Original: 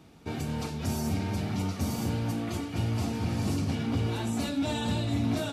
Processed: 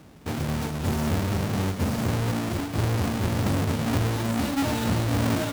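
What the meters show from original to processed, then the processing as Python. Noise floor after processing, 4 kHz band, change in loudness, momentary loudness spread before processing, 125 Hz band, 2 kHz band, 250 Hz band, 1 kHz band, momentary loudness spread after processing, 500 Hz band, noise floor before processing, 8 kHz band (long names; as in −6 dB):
−37 dBFS, +3.5 dB, +4.5 dB, 4 LU, +5.0 dB, +7.5 dB, +3.5 dB, +6.5 dB, 4 LU, +6.0 dB, −42 dBFS, +5.0 dB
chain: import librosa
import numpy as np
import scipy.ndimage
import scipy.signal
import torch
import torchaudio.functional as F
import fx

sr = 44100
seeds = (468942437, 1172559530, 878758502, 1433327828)

y = fx.halfwave_hold(x, sr)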